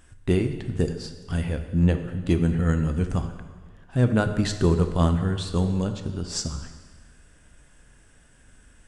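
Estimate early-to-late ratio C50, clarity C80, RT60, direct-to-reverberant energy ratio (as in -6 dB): 9.0 dB, 10.5 dB, 1.5 s, 7.0 dB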